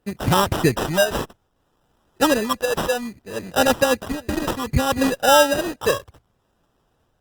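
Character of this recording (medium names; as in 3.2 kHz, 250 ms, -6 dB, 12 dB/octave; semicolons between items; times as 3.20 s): phasing stages 8, 0.63 Hz, lowest notch 230–4900 Hz; aliases and images of a low sample rate 2.2 kHz, jitter 0%; Opus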